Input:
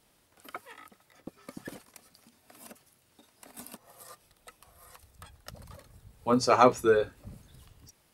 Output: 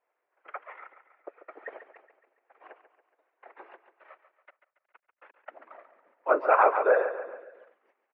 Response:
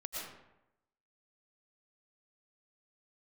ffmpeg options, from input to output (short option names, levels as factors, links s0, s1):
-filter_complex "[0:a]agate=range=0.224:threshold=0.00224:ratio=16:detection=peak,asettb=1/sr,asplit=3[s0][s1][s2];[s0]atrim=end=3.734[s3];[s1]atrim=start=3.73:end=5.37,asetpts=PTS-STARTPTS,afade=t=in:d=0.004:c=qsin,afade=t=out:st=1.636:d=0.004:c=qsin,acrusher=bits=5:dc=4:mix=0:aa=0.000001[s4];[s2]atrim=start=5.366[s5];[s3][s4]acrossfade=d=0.004:c1=hsin:c2=qsin[s6];[s6][s5]acrossfade=d=0.004:c1=qsin:c2=hsin,afftfilt=real='hypot(re,im)*cos(2*PI*random(0))':imag='hypot(re,im)*sin(2*PI*random(1))':win_size=512:overlap=0.75,aecho=1:1:140|280|420|560|700:0.266|0.13|0.0639|0.0313|0.0153,highpass=f=370:t=q:w=0.5412,highpass=f=370:t=q:w=1.307,lowpass=f=2200:t=q:w=0.5176,lowpass=f=2200:t=q:w=0.7071,lowpass=f=2200:t=q:w=1.932,afreqshift=68,alimiter=level_in=8.41:limit=0.891:release=50:level=0:latency=1,volume=0.376"